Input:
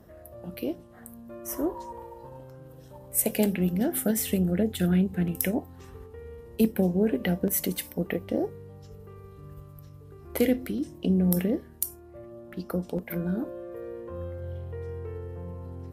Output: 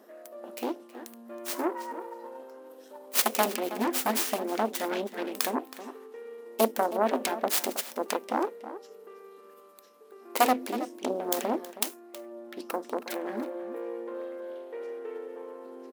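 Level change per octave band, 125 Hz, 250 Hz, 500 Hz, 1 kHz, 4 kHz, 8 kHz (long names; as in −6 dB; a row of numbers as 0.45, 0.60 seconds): below −20 dB, −8.0 dB, 0.0 dB, +13.0 dB, +6.0 dB, 0.0 dB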